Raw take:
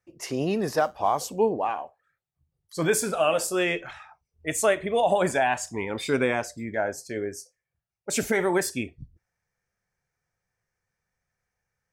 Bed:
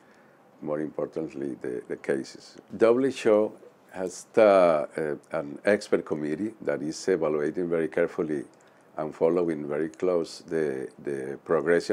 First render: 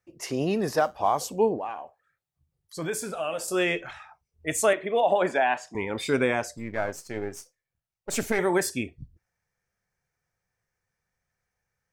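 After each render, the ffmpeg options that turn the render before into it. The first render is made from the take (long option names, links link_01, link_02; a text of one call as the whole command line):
ffmpeg -i in.wav -filter_complex "[0:a]asettb=1/sr,asplit=3[link_01][link_02][link_03];[link_01]atrim=end=1.584[link_04];[link_02]atrim=start=1.58:end=3.48,asetpts=PTS-STARTPTS,afade=type=in:duration=0.004:curve=qsin,afade=type=out:start_time=1.896:duration=0.004:curve=qsin,acompressor=threshold=-40dB:ratio=1.5:attack=3.2:release=140:knee=1:detection=peak[link_05];[link_03]atrim=start=3.476[link_06];[link_04][link_05]acrossfade=duration=0.004:curve1=hsin:curve2=qsin[link_07];[link_07][link_06]acrossfade=duration=0.004:curve1=qsin:curve2=hsin,asettb=1/sr,asplit=3[link_08][link_09][link_10];[link_08]atrim=end=4.734[link_11];[link_09]atrim=start=4.73:end=5.75,asetpts=PTS-STARTPTS,afade=type=in:duration=0.004:curve=qsin,afade=type=out:start_time=1.016:duration=0.004:curve=qsin,acrossover=split=200 4400:gain=0.0794 1 0.141[link_12][link_13][link_14];[link_12][link_13][link_14]amix=inputs=3:normalize=0[link_15];[link_10]atrim=start=5.746[link_16];[link_11][link_15]acrossfade=duration=0.004:curve1=hsin:curve2=qsin[link_17];[link_17][link_16]acrossfade=duration=0.004:curve1=qsin:curve2=hsin,asettb=1/sr,asplit=3[link_18][link_19][link_20];[link_18]atrim=end=6.574[link_21];[link_19]atrim=start=6.57:end=8.39,asetpts=PTS-STARTPTS,afade=type=in:duration=0.004:curve=qsin,afade=type=out:start_time=1.816:duration=0.004:curve=qsin,aeval=exprs='if(lt(val(0),0),0.447*val(0),val(0))':channel_layout=same[link_22];[link_20]atrim=start=8.386[link_23];[link_21][link_22]acrossfade=duration=0.004:curve1=hsin:curve2=qsin[link_24];[link_24][link_23]acrossfade=duration=0.004:curve1=qsin:curve2=hsin" out.wav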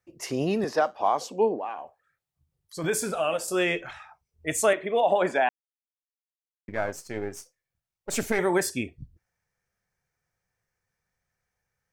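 ffmpeg -i in.wav -filter_complex "[0:a]asettb=1/sr,asplit=3[link_01][link_02][link_03];[link_01]atrim=end=0.644[link_04];[link_02]atrim=start=0.64:end=1.78,asetpts=PTS-STARTPTS,afade=type=in:duration=0.004:curve=qsin,afade=type=out:start_time=1.136:duration=0.004:curve=qsin,acrossover=split=190 6400:gain=0.112 1 0.2[link_05][link_06][link_07];[link_05][link_06][link_07]amix=inputs=3:normalize=0[link_08];[link_03]atrim=start=1.776[link_09];[link_04][link_08]acrossfade=duration=0.004:curve1=hsin:curve2=qsin[link_10];[link_10][link_09]acrossfade=duration=0.004:curve1=qsin:curve2=hsin,asplit=5[link_11][link_12][link_13][link_14][link_15];[link_11]atrim=end=2.842[link_16];[link_12]atrim=start=2.838:end=3.372,asetpts=PTS-STARTPTS,volume=4dB[link_17];[link_13]atrim=start=3.368:end=5.49,asetpts=PTS-STARTPTS,afade=type=out:start_time=2.118:duration=0.004:curve=hsin[link_18];[link_14]atrim=start=5.49:end=6.68,asetpts=PTS-STARTPTS,volume=0[link_19];[link_15]atrim=start=6.68,asetpts=PTS-STARTPTS,afade=type=in:duration=0.004:curve=hsin[link_20];[link_16][link_17]acrossfade=duration=0.004:curve1=hsin:curve2=hsin[link_21];[link_18][link_19][link_20]concat=n=3:v=0:a=1[link_22];[link_21][link_22]acrossfade=duration=0.004:curve1=hsin:curve2=hsin" out.wav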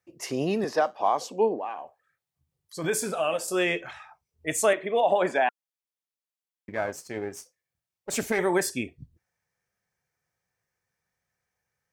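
ffmpeg -i in.wav -af "highpass=frequency=110:poles=1,bandreject=frequency=1400:width=21" out.wav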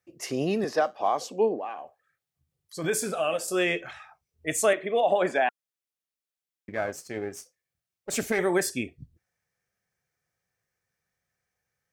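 ffmpeg -i in.wav -af "equalizer=frequency=940:width=5.9:gain=-7" out.wav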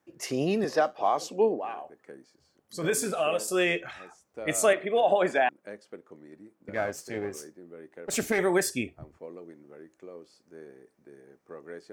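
ffmpeg -i in.wav -i bed.wav -filter_complex "[1:a]volume=-20dB[link_01];[0:a][link_01]amix=inputs=2:normalize=0" out.wav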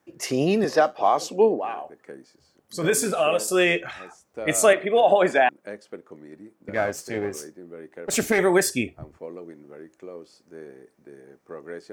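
ffmpeg -i in.wav -af "volume=5.5dB" out.wav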